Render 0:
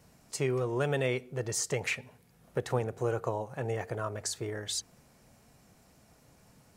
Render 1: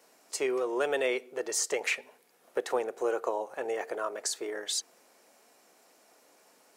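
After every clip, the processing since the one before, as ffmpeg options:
ffmpeg -i in.wav -af "highpass=frequency=330:width=0.5412,highpass=frequency=330:width=1.3066,volume=2.5dB" out.wav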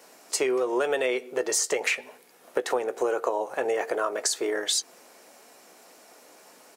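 ffmpeg -i in.wav -filter_complex "[0:a]asplit=2[link_01][link_02];[link_02]adelay=16,volume=-13.5dB[link_03];[link_01][link_03]amix=inputs=2:normalize=0,acompressor=threshold=-31dB:ratio=6,volume=9dB" out.wav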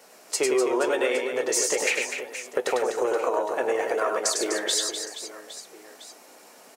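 ffmpeg -i in.wav -af "flanger=delay=1.4:depth=3.1:regen=-70:speed=0.37:shape=triangular,aecho=1:1:100|250|475|812.5|1319:0.631|0.398|0.251|0.158|0.1,volume=4.5dB" out.wav

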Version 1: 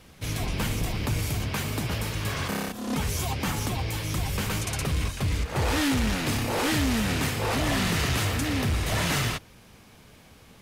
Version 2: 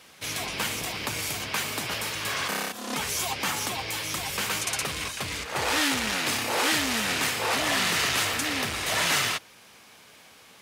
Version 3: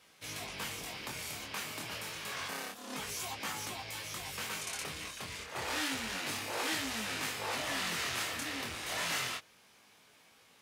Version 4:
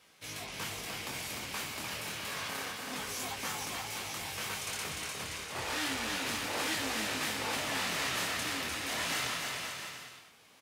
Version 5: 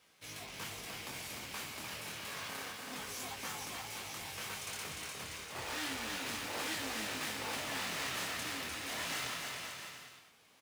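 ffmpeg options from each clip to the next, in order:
ffmpeg -i in.wav -af "highpass=frequency=920:poles=1,equalizer=frequency=13000:width=1.5:gain=-2.5,volume=5dB" out.wav
ffmpeg -i in.wav -af "flanger=delay=18.5:depth=7.1:speed=0.29,volume=-7.5dB" out.wav
ffmpeg -i in.wav -af "aecho=1:1:300|525|693.8|820.3|915.2:0.631|0.398|0.251|0.158|0.1" out.wav
ffmpeg -i in.wav -af "acrusher=bits=3:mode=log:mix=0:aa=0.000001,volume=-5dB" out.wav

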